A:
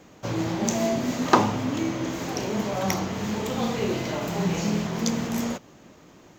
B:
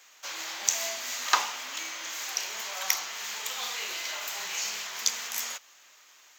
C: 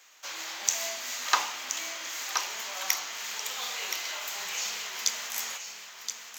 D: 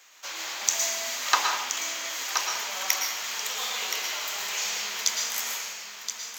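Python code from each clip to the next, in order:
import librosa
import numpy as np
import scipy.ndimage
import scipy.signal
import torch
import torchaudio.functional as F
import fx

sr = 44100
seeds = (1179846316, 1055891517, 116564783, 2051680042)

y1 = scipy.signal.sosfilt(scipy.signal.butter(2, 1400.0, 'highpass', fs=sr, output='sos'), x)
y1 = fx.tilt_eq(y1, sr, slope=2.0)
y2 = y1 + 10.0 ** (-8.0 / 20.0) * np.pad(y1, (int(1023 * sr / 1000.0), 0))[:len(y1)]
y2 = y2 * librosa.db_to_amplitude(-1.0)
y3 = fx.rev_plate(y2, sr, seeds[0], rt60_s=0.61, hf_ratio=0.95, predelay_ms=100, drr_db=3.0)
y3 = y3 * librosa.db_to_amplitude(2.0)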